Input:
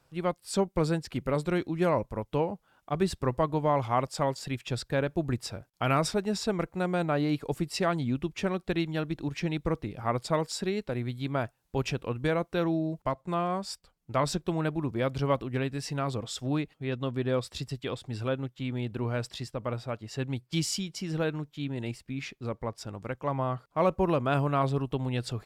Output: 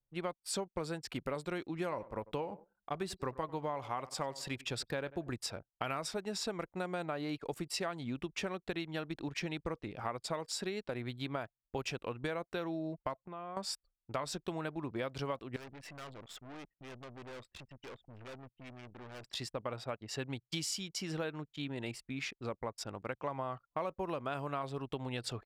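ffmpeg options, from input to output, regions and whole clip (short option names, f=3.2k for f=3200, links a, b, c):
-filter_complex "[0:a]asettb=1/sr,asplit=3[a][b][c];[a]atrim=end=1.664[d];[b]atrim=start=1.66:end=5.31,asetpts=PTS-STARTPTS,afade=t=in:d=0.004:c=qsin,afade=t=out:st=3.646:d=0.004:c=qsin,bandreject=f=640:w=19,asplit=2[e][f];[f]adelay=94,lowpass=f=4.7k:p=1,volume=-20dB,asplit=2[g][h];[h]adelay=94,lowpass=f=4.7k:p=1,volume=0.37,asplit=2[i][j];[j]adelay=94,lowpass=f=4.7k:p=1,volume=0.37[k];[e][g][i][k]amix=inputs=4:normalize=0,atrim=end_sample=160965[l];[c]atrim=start=5.306[m];[d][l]acrossfade=d=0.004:c1=hsin:c2=qsin[n];[n][m]acrossfade=d=0.004:c1=qsin:c2=hsin,asettb=1/sr,asplit=3[o][p][q];[o]atrim=end=13.164[r];[p]atrim=start=13.16:end=13.57,asetpts=PTS-STARTPTS,afade=t=in:d=0.004:c=qsin,afade=t=out:st=0.406:d=0.004:c=qsin,acompressor=threshold=-38dB:ratio=20:attack=3.2:release=140:knee=1:detection=peak,lowpass=f=3.4k:w=0.5412,lowpass=f=3.4k:w=1.3066[s];[q]atrim=start=13.566[t];[r][s]acrossfade=d=0.004:c1=hsin:c2=qsin[u];[u][t]acrossfade=d=0.004:c1=qsin:c2=hsin,asettb=1/sr,asplit=3[v][w][x];[v]atrim=end=15.564[y];[w]atrim=start=15.56:end=19.29,asetpts=PTS-STARTPTS,afade=t=in:d=0.004:c=qsin,afade=t=out:st=3.726:d=0.004:c=qsin,highshelf=f=3.2k:t=q:w=1.5:g=-9.5,aeval=exprs='(tanh(158*val(0)+0.75)-tanh(0.75))/158':c=same[z];[x]atrim=start=19.286[aa];[y][z]acrossfade=d=0.004:c1=hsin:c2=qsin[ab];[ab][aa]acrossfade=d=0.004:c1=qsin:c2=hsin,lowshelf=f=280:g=-11,anlmdn=0.00251,acompressor=threshold=-36dB:ratio=6,volume=1.5dB"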